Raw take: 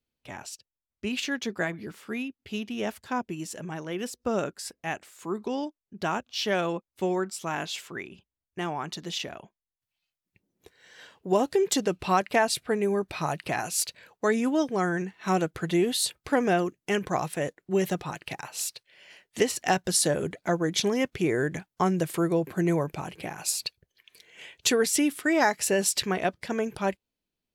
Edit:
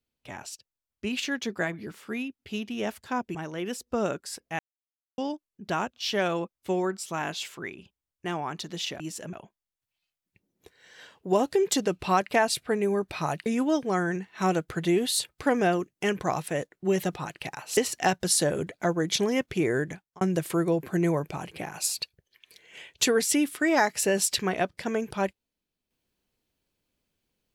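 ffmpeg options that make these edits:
ffmpeg -i in.wav -filter_complex "[0:a]asplit=9[link_01][link_02][link_03][link_04][link_05][link_06][link_07][link_08][link_09];[link_01]atrim=end=3.352[link_10];[link_02]atrim=start=3.678:end=4.92,asetpts=PTS-STARTPTS,afade=type=out:start_time=1.238:duration=0.004:curve=hsin[link_11];[link_03]atrim=start=4.92:end=5.51,asetpts=PTS-STARTPTS,volume=0[link_12];[link_04]atrim=start=5.51:end=9.332,asetpts=PTS-STARTPTS,afade=type=in:duration=0.004:curve=hsin[link_13];[link_05]atrim=start=3.348:end=3.682[link_14];[link_06]atrim=start=9.328:end=13.462[link_15];[link_07]atrim=start=14.318:end=18.632[link_16];[link_08]atrim=start=19.408:end=21.85,asetpts=PTS-STARTPTS,afade=type=out:start_time=2.002:duration=0.44[link_17];[link_09]atrim=start=21.85,asetpts=PTS-STARTPTS,afade=type=in:duration=0.004:curve=hsin[link_18];[link_11][link_12][link_13]concat=n=3:v=0:a=1[link_19];[link_10][link_19]acrossfade=duration=0.004:curve1=hsin:curve2=hsin[link_20];[link_20][link_14]acrossfade=duration=0.004:curve1=hsin:curve2=hsin[link_21];[link_21][link_15]acrossfade=duration=0.004:curve1=hsin:curve2=hsin[link_22];[link_22][link_16]acrossfade=duration=0.004:curve1=hsin:curve2=hsin[link_23];[link_17][link_18]concat=n=2:v=0:a=1[link_24];[link_23][link_24]acrossfade=duration=0.004:curve1=hsin:curve2=hsin" out.wav

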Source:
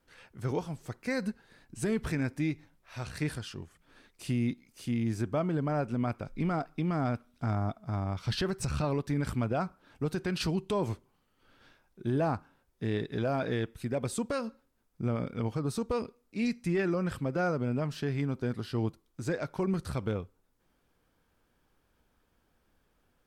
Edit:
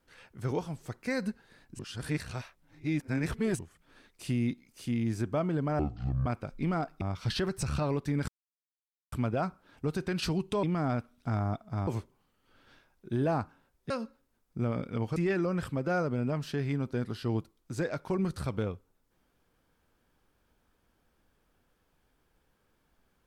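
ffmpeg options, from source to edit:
ffmpeg -i in.wav -filter_complex "[0:a]asplit=11[link_01][link_02][link_03][link_04][link_05][link_06][link_07][link_08][link_09][link_10][link_11];[link_01]atrim=end=1.792[link_12];[link_02]atrim=start=1.788:end=3.592,asetpts=PTS-STARTPTS,areverse[link_13];[link_03]atrim=start=3.588:end=5.794[link_14];[link_04]atrim=start=5.79:end=6.04,asetpts=PTS-STARTPTS,asetrate=23373,aresample=44100[link_15];[link_05]atrim=start=6.036:end=6.792[link_16];[link_06]atrim=start=8.028:end=9.3,asetpts=PTS-STARTPTS,afade=type=out:start_time=1.268:duration=0.004:curve=hsin,apad=pad_dur=0.84[link_17];[link_07]atrim=start=9.3:end=10.812,asetpts=PTS-STARTPTS,afade=type=in:duration=0.004:curve=hsin[link_18];[link_08]atrim=start=6.788:end=8.032[link_19];[link_09]atrim=start=10.808:end=12.842[link_20];[link_10]atrim=start=14.338:end=15.602[link_21];[link_11]atrim=start=16.648[link_22];[link_12][link_13]acrossfade=duration=0.004:curve1=hsin:curve2=hsin[link_23];[link_23][link_14]acrossfade=duration=0.004:curve1=hsin:curve2=hsin[link_24];[link_24][link_15]acrossfade=duration=0.004:curve1=hsin:curve2=hsin[link_25];[link_25][link_16]acrossfade=duration=0.004:curve1=hsin:curve2=hsin[link_26];[link_17][link_18]concat=n=2:v=0:a=1[link_27];[link_26][link_27]acrossfade=duration=0.004:curve1=hsin:curve2=hsin[link_28];[link_28][link_19]acrossfade=duration=0.004:curve1=hsin:curve2=hsin[link_29];[link_29][link_20]acrossfade=duration=0.004:curve1=hsin:curve2=hsin[link_30];[link_30][link_21]acrossfade=duration=0.004:curve1=hsin:curve2=hsin[link_31];[link_31][link_22]acrossfade=duration=0.004:curve1=hsin:curve2=hsin" out.wav

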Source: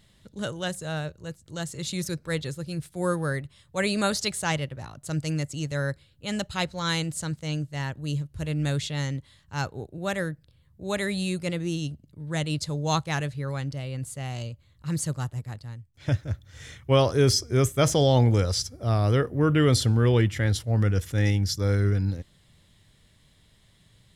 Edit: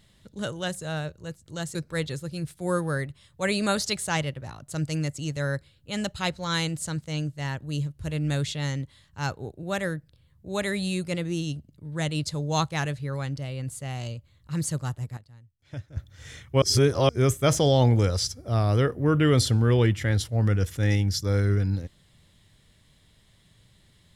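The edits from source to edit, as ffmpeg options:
ffmpeg -i in.wav -filter_complex "[0:a]asplit=6[link_01][link_02][link_03][link_04][link_05][link_06];[link_01]atrim=end=1.752[link_07];[link_02]atrim=start=2.098:end=15.522[link_08];[link_03]atrim=start=15.518:end=16.322,asetpts=PTS-STARTPTS,volume=-12dB[link_09];[link_04]atrim=start=16.318:end=16.972[link_10];[link_05]atrim=start=16.968:end=17.442,asetpts=PTS-STARTPTS,areverse[link_11];[link_06]atrim=start=17.438[link_12];[link_07][link_08]acrossfade=duration=0.004:curve1=hsin:curve2=hsin[link_13];[link_13][link_09]acrossfade=duration=0.004:curve1=hsin:curve2=hsin[link_14];[link_14][link_10]acrossfade=duration=0.004:curve1=hsin:curve2=hsin[link_15];[link_15][link_11]acrossfade=duration=0.004:curve1=hsin:curve2=hsin[link_16];[link_16][link_12]acrossfade=duration=0.004:curve1=hsin:curve2=hsin" out.wav

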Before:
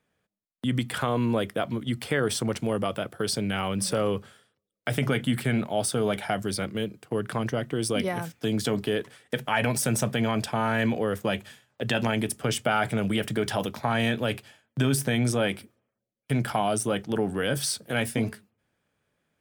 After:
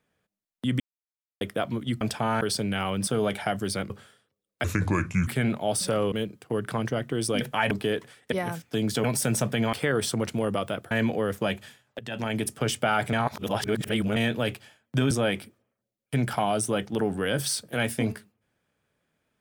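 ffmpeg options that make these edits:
ffmpeg -i in.wav -filter_complex "[0:a]asplit=21[link_01][link_02][link_03][link_04][link_05][link_06][link_07][link_08][link_09][link_10][link_11][link_12][link_13][link_14][link_15][link_16][link_17][link_18][link_19][link_20][link_21];[link_01]atrim=end=0.8,asetpts=PTS-STARTPTS,afade=type=out:start_time=0.796:duration=0.004:curve=hsin[link_22];[link_02]atrim=start=0.8:end=1.41,asetpts=PTS-STARTPTS,volume=0[link_23];[link_03]atrim=start=1.41:end=2.012,asetpts=PTS-STARTPTS,afade=type=in:duration=0.004:curve=hsin[link_24];[link_04]atrim=start=10.338:end=10.742[link_25];[link_05]atrim=start=3.188:end=3.852[link_26];[link_06]atrim=start=5.898:end=6.732[link_27];[link_07]atrim=start=4.158:end=4.904[link_28];[link_08]atrim=start=4.9:end=5.36,asetpts=PTS-STARTPTS,asetrate=32193,aresample=44100,atrim=end_sample=27789,asetpts=PTS-STARTPTS[link_29];[link_09]atrim=start=5.356:end=5.902[link_30];[link_10]atrim=start=3.848:end=4.162[link_31];[link_11]atrim=start=6.728:end=8.022[link_32];[link_12]atrim=start=9.348:end=9.652[link_33];[link_13]atrim=start=8.738:end=9.352[link_34];[link_14]atrim=start=8.018:end=8.742[link_35];[link_15]atrim=start=9.648:end=10.342[link_36];[link_16]atrim=start=2.008:end=3.192[link_37];[link_17]atrim=start=10.738:end=11.82,asetpts=PTS-STARTPTS,afade=type=out:start_time=1.078:duration=0.004:curve=hsin:silence=0.125893[link_38];[link_18]atrim=start=11.82:end=12.962,asetpts=PTS-STARTPTS,afade=type=in:duration=0.47:silence=0.125893[link_39];[link_19]atrim=start=12.958:end=13.992,asetpts=PTS-STARTPTS,areverse[link_40];[link_20]atrim=start=13.988:end=14.942[link_41];[link_21]atrim=start=15.278[link_42];[link_22][link_23][link_24]concat=n=3:v=0:a=1[link_43];[link_43][link_25]acrossfade=duration=0.004:curve1=hsin:curve2=hsin[link_44];[link_44][link_26]acrossfade=duration=0.004:curve1=hsin:curve2=hsin[link_45];[link_45][link_27]acrossfade=duration=0.004:curve1=hsin:curve2=hsin[link_46];[link_46][link_28]acrossfade=duration=0.004:curve1=hsin:curve2=hsin[link_47];[link_47][link_29]acrossfade=duration=0.004:curve1=hsin:curve2=hsin[link_48];[link_48][link_30]acrossfade=duration=0.004:curve1=hsin:curve2=hsin[link_49];[link_49][link_31]acrossfade=duration=0.004:curve1=hsin:curve2=hsin[link_50];[link_50][link_32]acrossfade=duration=0.004:curve1=hsin:curve2=hsin[link_51];[link_51][link_33]acrossfade=duration=0.004:curve1=hsin:curve2=hsin[link_52];[link_52][link_34]acrossfade=duration=0.004:curve1=hsin:curve2=hsin[link_53];[link_53][link_35]acrossfade=duration=0.004:curve1=hsin:curve2=hsin[link_54];[link_54][link_36]acrossfade=duration=0.004:curve1=hsin:curve2=hsin[link_55];[link_55][link_37]acrossfade=duration=0.004:curve1=hsin:curve2=hsin[link_56];[link_38][link_39]concat=n=2:v=0:a=1[link_57];[link_56][link_57]acrossfade=duration=0.004:curve1=hsin:curve2=hsin[link_58];[link_58][link_40]acrossfade=duration=0.004:curve1=hsin:curve2=hsin[link_59];[link_59][link_41]acrossfade=duration=0.004:curve1=hsin:curve2=hsin[link_60];[link_60][link_42]acrossfade=duration=0.004:curve1=hsin:curve2=hsin" out.wav

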